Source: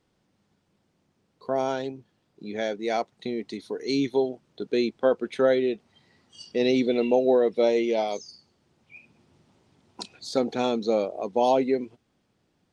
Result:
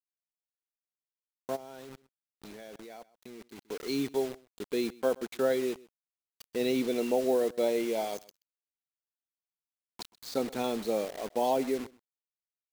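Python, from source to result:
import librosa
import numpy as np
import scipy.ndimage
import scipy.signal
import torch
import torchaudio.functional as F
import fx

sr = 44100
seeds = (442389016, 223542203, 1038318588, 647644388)

y = fx.quant_dither(x, sr, seeds[0], bits=6, dither='none')
y = y + 10.0 ** (-22.5 / 20.0) * np.pad(y, (int(128 * sr / 1000.0), 0))[:len(y)]
y = fx.level_steps(y, sr, step_db=20, at=(1.55, 3.68), fade=0.02)
y = y * librosa.db_to_amplitude(-6.5)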